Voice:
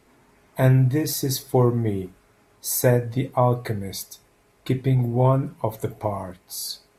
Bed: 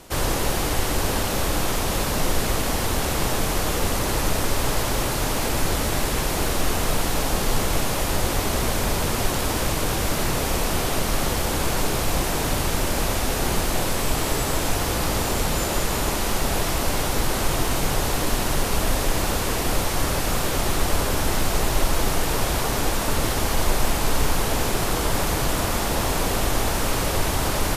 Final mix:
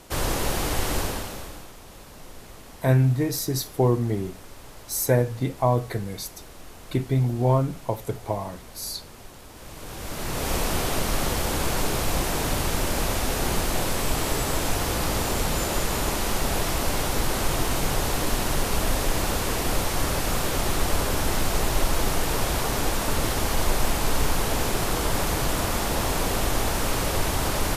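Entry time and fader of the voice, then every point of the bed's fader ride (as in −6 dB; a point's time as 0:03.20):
2.25 s, −2.0 dB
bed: 0:00.98 −2.5 dB
0:01.73 −21.5 dB
0:09.51 −21.5 dB
0:10.52 −2 dB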